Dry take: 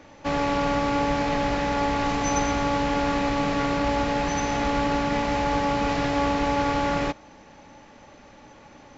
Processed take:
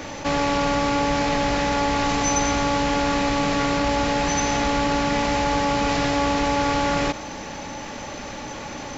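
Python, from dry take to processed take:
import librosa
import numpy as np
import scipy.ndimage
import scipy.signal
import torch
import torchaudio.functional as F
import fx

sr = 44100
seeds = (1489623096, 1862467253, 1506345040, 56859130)

y = fx.high_shelf(x, sr, hz=4300.0, db=9.5)
y = fx.env_flatten(y, sr, amount_pct=50)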